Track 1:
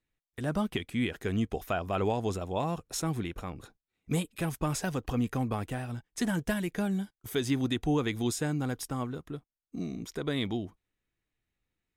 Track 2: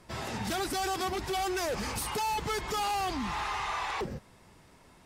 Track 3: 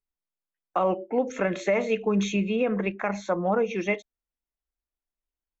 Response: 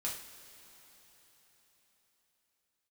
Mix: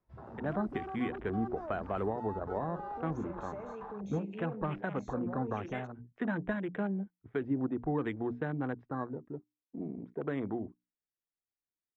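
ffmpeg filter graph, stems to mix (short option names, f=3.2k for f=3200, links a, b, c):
-filter_complex "[0:a]lowpass=f=1.9k:w=0.5412,lowpass=f=1.9k:w=1.3066,lowshelf=f=140:g=-12,bandreject=f=60:t=h:w=6,bandreject=f=120:t=h:w=6,bandreject=f=180:t=h:w=6,bandreject=f=240:t=h:w=6,bandreject=f=300:t=h:w=6,volume=0.5dB[a];[1:a]lowpass=1.2k,acontrast=45,volume=-14dB[b];[2:a]acontrast=64,adelay=1850,volume=-18dB[c];[b][c]amix=inputs=2:normalize=0,aemphasis=mode=production:type=75fm,alimiter=level_in=11dB:limit=-24dB:level=0:latency=1:release=20,volume=-11dB,volume=0dB[d];[a][d]amix=inputs=2:normalize=0,afwtdn=0.00794,acrossover=split=280|3000[e][f][g];[f]acompressor=threshold=-32dB:ratio=6[h];[e][h][g]amix=inputs=3:normalize=0"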